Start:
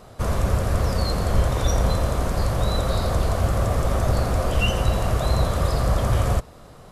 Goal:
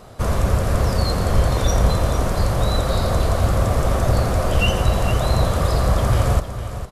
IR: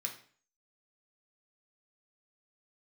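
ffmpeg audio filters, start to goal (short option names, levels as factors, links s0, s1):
-af "aecho=1:1:456:0.282,volume=1.41"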